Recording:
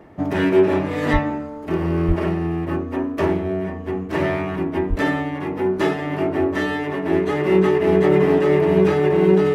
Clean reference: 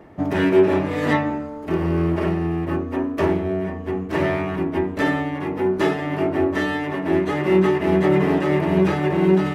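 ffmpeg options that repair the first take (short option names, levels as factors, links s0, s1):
-filter_complex "[0:a]bandreject=f=430:w=30,asplit=3[s0][s1][s2];[s0]afade=t=out:st=1.12:d=0.02[s3];[s1]highpass=f=140:w=0.5412,highpass=f=140:w=1.3066,afade=t=in:st=1.12:d=0.02,afade=t=out:st=1.24:d=0.02[s4];[s2]afade=t=in:st=1.24:d=0.02[s5];[s3][s4][s5]amix=inputs=3:normalize=0,asplit=3[s6][s7][s8];[s6]afade=t=out:st=2.07:d=0.02[s9];[s7]highpass=f=140:w=0.5412,highpass=f=140:w=1.3066,afade=t=in:st=2.07:d=0.02,afade=t=out:st=2.19:d=0.02[s10];[s8]afade=t=in:st=2.19:d=0.02[s11];[s9][s10][s11]amix=inputs=3:normalize=0,asplit=3[s12][s13][s14];[s12]afade=t=out:st=4.89:d=0.02[s15];[s13]highpass=f=140:w=0.5412,highpass=f=140:w=1.3066,afade=t=in:st=4.89:d=0.02,afade=t=out:st=5.01:d=0.02[s16];[s14]afade=t=in:st=5.01:d=0.02[s17];[s15][s16][s17]amix=inputs=3:normalize=0"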